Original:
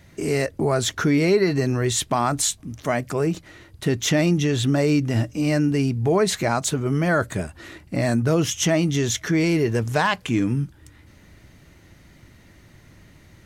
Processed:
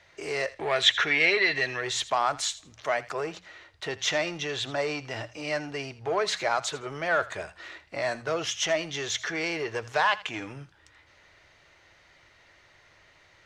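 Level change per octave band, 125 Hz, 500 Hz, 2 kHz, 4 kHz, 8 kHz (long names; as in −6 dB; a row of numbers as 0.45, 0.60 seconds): −21.0, −7.0, +1.0, +1.0, −8.5 decibels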